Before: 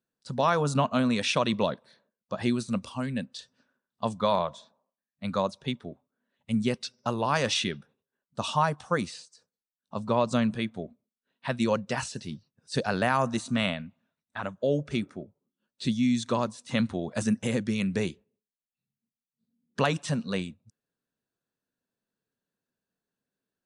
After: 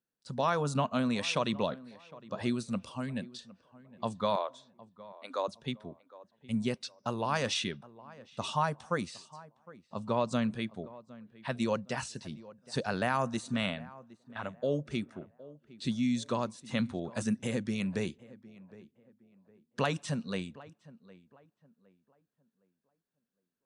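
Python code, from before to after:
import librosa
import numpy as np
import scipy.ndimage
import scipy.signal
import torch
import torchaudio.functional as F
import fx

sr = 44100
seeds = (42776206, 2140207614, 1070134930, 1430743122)

y = fx.ellip_highpass(x, sr, hz=270.0, order=4, stop_db=40, at=(4.36, 5.48))
y = fx.echo_tape(y, sr, ms=762, feedback_pct=36, wet_db=-18.0, lp_hz=1500.0, drive_db=7.0, wow_cents=21)
y = F.gain(torch.from_numpy(y), -5.0).numpy()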